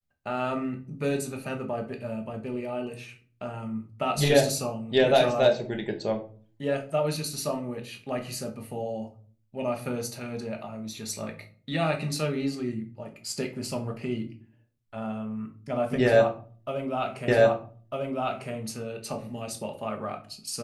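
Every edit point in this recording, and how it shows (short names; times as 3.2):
17.28 repeat of the last 1.25 s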